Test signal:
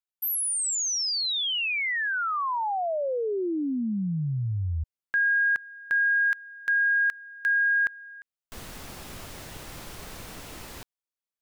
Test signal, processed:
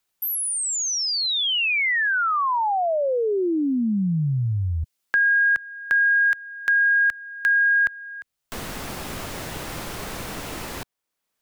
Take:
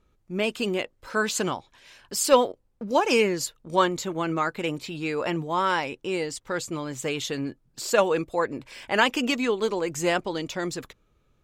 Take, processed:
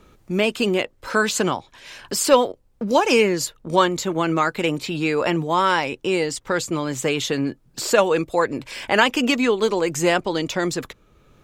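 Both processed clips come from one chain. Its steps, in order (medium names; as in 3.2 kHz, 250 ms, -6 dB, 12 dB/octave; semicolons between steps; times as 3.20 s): three bands compressed up and down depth 40%; trim +5.5 dB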